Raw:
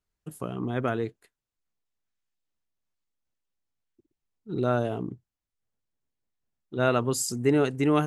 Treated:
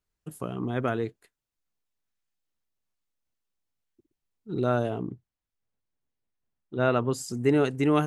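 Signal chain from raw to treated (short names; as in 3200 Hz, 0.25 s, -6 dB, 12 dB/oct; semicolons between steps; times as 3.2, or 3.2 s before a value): 4.89–7.33 high shelf 8300 Hz -> 4200 Hz -11.5 dB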